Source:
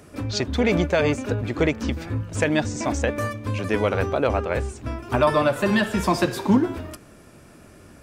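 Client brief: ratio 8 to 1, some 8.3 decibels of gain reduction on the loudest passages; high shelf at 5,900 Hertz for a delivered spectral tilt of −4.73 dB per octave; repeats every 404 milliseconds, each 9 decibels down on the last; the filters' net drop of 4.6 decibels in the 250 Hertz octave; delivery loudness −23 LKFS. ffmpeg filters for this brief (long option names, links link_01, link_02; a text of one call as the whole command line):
ffmpeg -i in.wav -af "equalizer=frequency=250:width_type=o:gain=-6,highshelf=frequency=5900:gain=4,acompressor=threshold=-24dB:ratio=8,aecho=1:1:404|808|1212|1616:0.355|0.124|0.0435|0.0152,volume=6dB" out.wav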